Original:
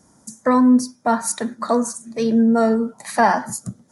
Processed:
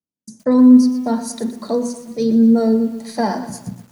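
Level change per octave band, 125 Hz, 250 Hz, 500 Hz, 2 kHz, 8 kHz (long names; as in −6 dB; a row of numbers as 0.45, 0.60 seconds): +3.0 dB, +5.0 dB, +0.5 dB, can't be measured, −6.0 dB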